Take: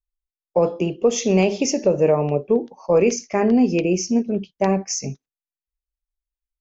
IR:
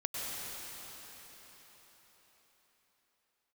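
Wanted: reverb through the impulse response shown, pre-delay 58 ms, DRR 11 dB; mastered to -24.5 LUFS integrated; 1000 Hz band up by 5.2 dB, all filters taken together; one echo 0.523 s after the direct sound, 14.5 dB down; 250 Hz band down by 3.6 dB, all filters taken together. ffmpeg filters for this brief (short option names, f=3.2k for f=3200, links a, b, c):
-filter_complex "[0:a]equalizer=f=250:t=o:g=-5,equalizer=f=1k:t=o:g=7.5,aecho=1:1:523:0.188,asplit=2[a][b];[1:a]atrim=start_sample=2205,adelay=58[c];[b][c]afir=irnorm=-1:irlink=0,volume=-15.5dB[d];[a][d]amix=inputs=2:normalize=0,volume=-4.5dB"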